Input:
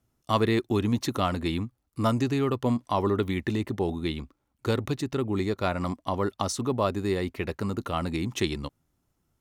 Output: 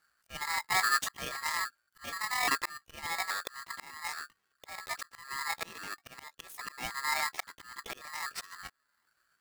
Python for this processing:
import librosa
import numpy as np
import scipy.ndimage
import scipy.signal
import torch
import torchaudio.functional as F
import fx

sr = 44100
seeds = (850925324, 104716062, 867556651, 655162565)

y = fx.pitch_ramps(x, sr, semitones=11.5, every_ms=826)
y = fx.auto_swell(y, sr, attack_ms=671.0)
y = y * np.sign(np.sin(2.0 * np.pi * 1500.0 * np.arange(len(y)) / sr))